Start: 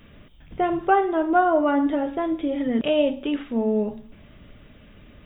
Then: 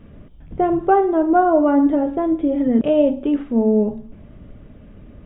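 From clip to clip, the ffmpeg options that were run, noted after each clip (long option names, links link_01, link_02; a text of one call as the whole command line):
ffmpeg -i in.wav -af "tiltshelf=frequency=1500:gain=10,volume=-2.5dB" out.wav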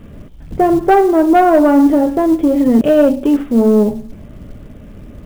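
ffmpeg -i in.wav -af "acrusher=bits=7:mode=log:mix=0:aa=0.000001,acontrast=89" out.wav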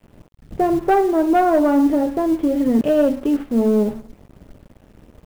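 ffmpeg -i in.wav -af "aeval=exprs='sgn(val(0))*max(abs(val(0))-0.0188,0)':channel_layout=same,volume=-5.5dB" out.wav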